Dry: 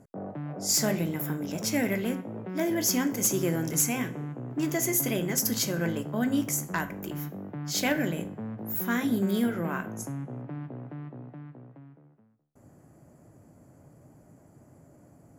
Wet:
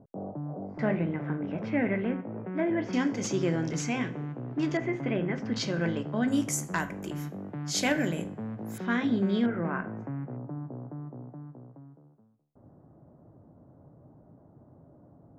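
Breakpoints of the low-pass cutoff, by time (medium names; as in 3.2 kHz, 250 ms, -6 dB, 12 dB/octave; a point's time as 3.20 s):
low-pass 24 dB/octave
1 kHz
from 0.79 s 2.4 kHz
from 2.93 s 5.1 kHz
from 4.77 s 2.5 kHz
from 5.56 s 4.9 kHz
from 6.28 s 10 kHz
from 8.78 s 4.4 kHz
from 9.46 s 2.2 kHz
from 10.37 s 1.2 kHz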